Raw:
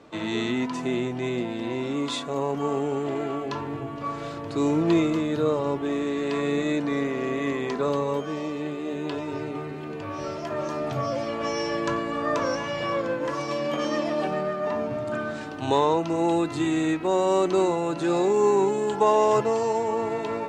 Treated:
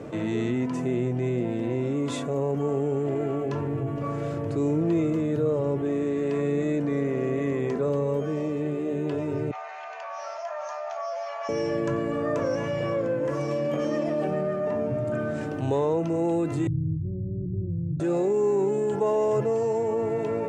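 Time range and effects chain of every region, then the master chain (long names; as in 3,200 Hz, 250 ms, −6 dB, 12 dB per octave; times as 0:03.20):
0:09.51–0:11.49: Chebyshev band-pass filter 670–6,600 Hz, order 5 + dynamic equaliser 2,500 Hz, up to −6 dB, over −48 dBFS, Q 0.84
0:16.67–0:18.00: inverse Chebyshev low-pass filter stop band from 990 Hz, stop band 70 dB + low shelf with overshoot 150 Hz +11.5 dB, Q 3
whole clip: octave-band graphic EQ 125/500/1,000/4,000 Hz +10/+6/−6/−11 dB; envelope flattener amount 50%; level −7.5 dB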